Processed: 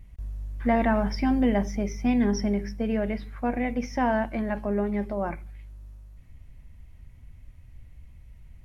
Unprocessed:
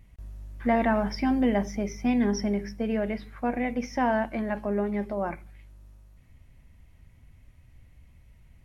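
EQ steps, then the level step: bass shelf 91 Hz +9 dB; 0.0 dB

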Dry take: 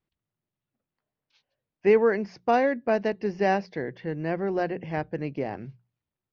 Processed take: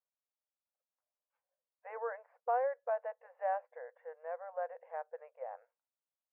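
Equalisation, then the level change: brick-wall FIR high-pass 470 Hz; low-pass 1.4 kHz 24 dB/octave; -9.0 dB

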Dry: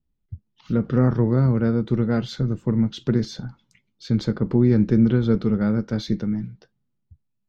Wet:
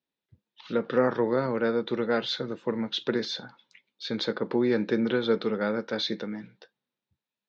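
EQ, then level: cabinet simulation 400–5900 Hz, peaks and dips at 510 Hz +5 dB, 930 Hz +4 dB, 1.7 kHz +6 dB, 2.5 kHz +5 dB, 3.7 kHz +9 dB; 0.0 dB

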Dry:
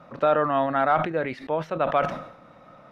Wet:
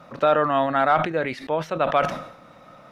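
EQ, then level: treble shelf 3.7 kHz +10.5 dB; +1.5 dB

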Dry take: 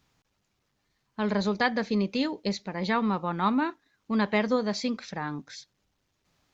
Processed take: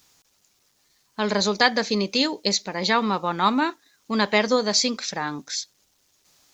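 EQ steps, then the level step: tone controls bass -8 dB, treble +14 dB; +6.0 dB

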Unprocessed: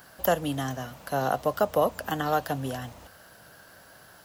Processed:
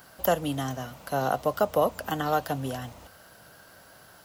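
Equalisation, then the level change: band-stop 1.7 kHz, Q 15; 0.0 dB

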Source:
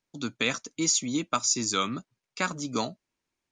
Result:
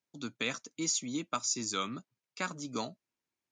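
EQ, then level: high-pass 89 Hz; -7.0 dB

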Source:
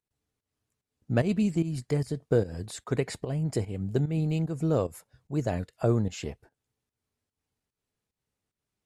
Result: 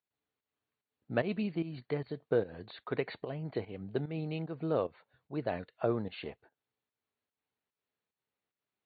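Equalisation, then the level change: high-pass 540 Hz 6 dB/octave; brick-wall FIR low-pass 4.6 kHz; distance through air 140 m; 0.0 dB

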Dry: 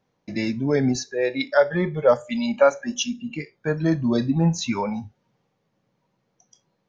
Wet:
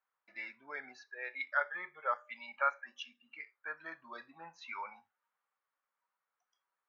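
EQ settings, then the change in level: dynamic bell 2.2 kHz, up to +6 dB, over -47 dBFS, Q 5; ladder band-pass 1.5 kHz, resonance 50%; distance through air 100 m; 0.0 dB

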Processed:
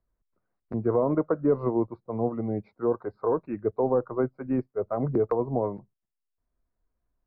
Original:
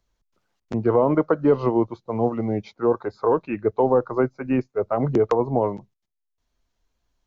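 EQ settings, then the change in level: boxcar filter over 14 samples; distance through air 180 m; band-stop 860 Hz, Q 12; -4.5 dB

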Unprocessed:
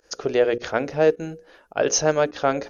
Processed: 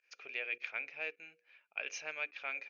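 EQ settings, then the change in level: band-pass filter 2.4 kHz, Q 15; +5.5 dB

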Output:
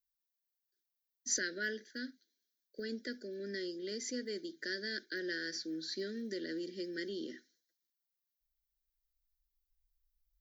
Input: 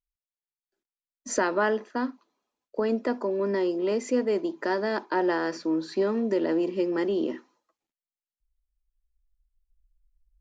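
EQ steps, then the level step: Chebyshev band-stop 700–1500 Hz, order 4; pre-emphasis filter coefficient 0.9; static phaser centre 2.6 kHz, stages 6; +7.5 dB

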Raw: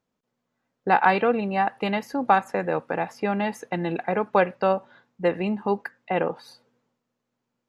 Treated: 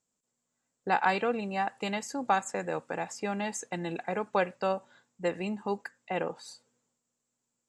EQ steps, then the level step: resonant low-pass 7.6 kHz, resonance Q 7.3; treble shelf 5.3 kHz +11.5 dB; -8.0 dB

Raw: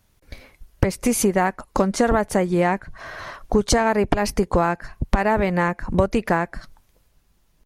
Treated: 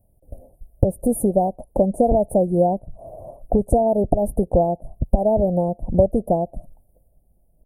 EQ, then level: Chebyshev band-stop 690–9400 Hz, order 4; bass shelf 220 Hz +7 dB; high-order bell 690 Hz +8 dB 1.1 oct; -3.0 dB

